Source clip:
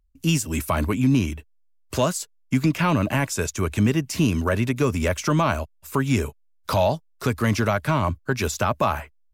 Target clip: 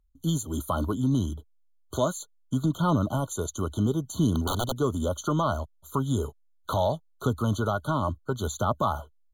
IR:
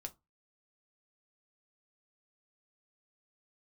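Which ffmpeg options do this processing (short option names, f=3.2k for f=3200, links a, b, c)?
-filter_complex "[0:a]asettb=1/sr,asplit=3[a][b][c];[a]atrim=end=4.344[d];[b]atrim=start=4.34:end=4.76,asetpts=PTS-STARTPTS,afade=t=in:d=0.004:c=qsin,afade=t=out:st=0.416:d=0.004:c=qsin,aeval=exprs='(mod(5.96*val(0)+1,2)-1)/5.96':c=same[e];[c]atrim=start=4.756[f];[d][e]acrossfade=d=0.004:c1=hsin:c2=qsin[g];[g][f]acrossfade=d=0.004:c1=qsin:c2=hsin,aphaser=in_gain=1:out_gain=1:delay=3.9:decay=0.24:speed=0.69:type=triangular,afftfilt=real='re*eq(mod(floor(b*sr/1024/1500),2),0)':imag='im*eq(mod(floor(b*sr/1024/1500),2),0)':win_size=1024:overlap=0.75,volume=-4.5dB"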